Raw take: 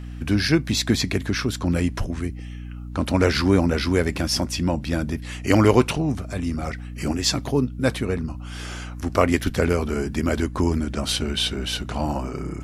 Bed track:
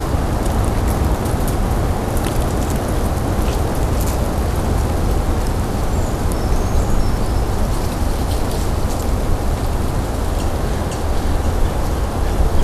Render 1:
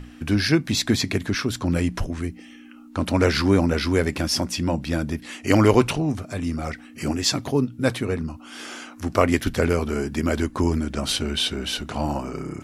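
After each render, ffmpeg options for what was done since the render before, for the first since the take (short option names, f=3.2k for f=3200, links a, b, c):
-af "bandreject=f=60:t=h:w=6,bandreject=f=120:t=h:w=6,bandreject=f=180:t=h:w=6"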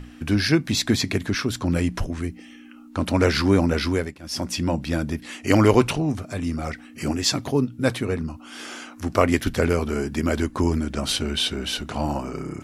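-filter_complex "[0:a]asplit=3[a][b][c];[a]atrim=end=4.18,asetpts=PTS-STARTPTS,afade=t=out:st=3.87:d=0.31:silence=0.0891251[d];[b]atrim=start=4.18:end=4.2,asetpts=PTS-STARTPTS,volume=-21dB[e];[c]atrim=start=4.2,asetpts=PTS-STARTPTS,afade=t=in:d=0.31:silence=0.0891251[f];[d][e][f]concat=n=3:v=0:a=1"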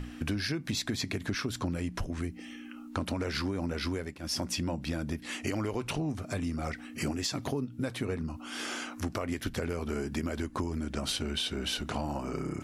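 -af "alimiter=limit=-13dB:level=0:latency=1:release=155,acompressor=threshold=-30dB:ratio=5"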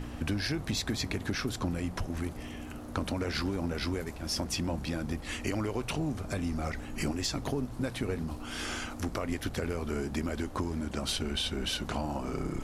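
-filter_complex "[1:a]volume=-26dB[a];[0:a][a]amix=inputs=2:normalize=0"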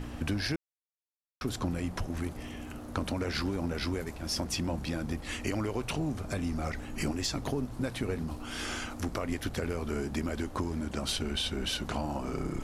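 -filter_complex "[0:a]asplit=3[a][b][c];[a]atrim=end=0.56,asetpts=PTS-STARTPTS,afade=t=out:st=0.556:d=0.004:c=hsin[d];[b]atrim=start=0.56:end=1.41,asetpts=PTS-STARTPTS,volume=0[e];[c]atrim=start=1.41,asetpts=PTS-STARTPTS,afade=t=in:d=0.004:c=hsin[f];[d][e][f]concat=n=3:v=0:a=1"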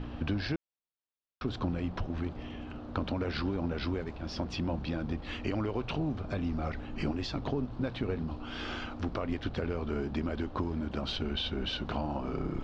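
-af "lowpass=f=4k:w=0.5412,lowpass=f=4k:w=1.3066,equalizer=f=2k:w=2.6:g=-5.5"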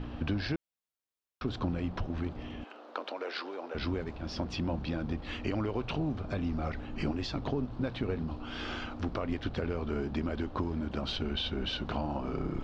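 -filter_complex "[0:a]asettb=1/sr,asplit=3[a][b][c];[a]atrim=end=2.644[d];[b]atrim=start=2.64:end=3.75,asetpts=PTS-STARTPTS,afade=t=in:d=0.004:c=qsin,afade=t=out:st=1.106:d=0.004:c=qsin,highpass=f=410:w=0.5412,highpass=f=410:w=1.3066[e];[c]atrim=start=3.746[f];[d][e]acrossfade=d=0.004:c1=hsin:c2=qsin[g];[g][f]acrossfade=d=0.004:c1=qsin:c2=hsin"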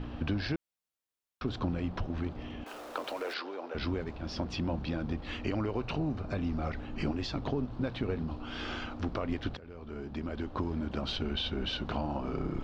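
-filter_complex "[0:a]asettb=1/sr,asplit=3[a][b][c];[a]atrim=end=2.664[d];[b]atrim=start=2.66:end=3.34,asetpts=PTS-STARTPTS,afade=t=in:d=0.004:c=qsin,afade=t=out:st=0.676:d=0.004:c=qsin,aeval=exprs='val(0)+0.5*0.00631*sgn(val(0))':c=same[e];[c]atrim=start=3.336[f];[d][e]acrossfade=d=0.004:c1=hsin:c2=qsin[g];[g][f]acrossfade=d=0.004:c1=qsin:c2=hsin,asettb=1/sr,asplit=3[h][i][j];[h]atrim=end=5.564[k];[i]atrim=start=5.56:end=6.38,asetpts=PTS-STARTPTS,afade=t=in:d=0.004:c=qsin,afade=t=out:st=0.816:d=0.004:c=qsin,bandreject=f=3.3k:w=8.3[l];[j]atrim=start=6.376[m];[k][l]acrossfade=d=0.004:c1=hsin:c2=qsin[n];[n][m]acrossfade=d=0.004:c1=qsin:c2=hsin,asplit=2[o][p];[o]atrim=end=9.57,asetpts=PTS-STARTPTS,afade=t=out:st=9.566:d=0.004:c=hsin:silence=0.0944061[q];[p]atrim=start=9.57,asetpts=PTS-STARTPTS,afade=t=in:d=1.12:silence=0.0944061[r];[q][r]concat=n=2:v=0:a=1"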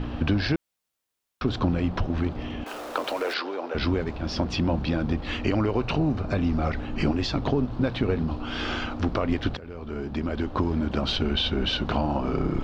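-af "volume=8.5dB"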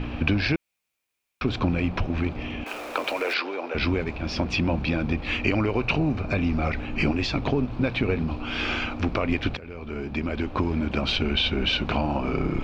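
-af "equalizer=f=2.4k:t=o:w=0.31:g=12.5"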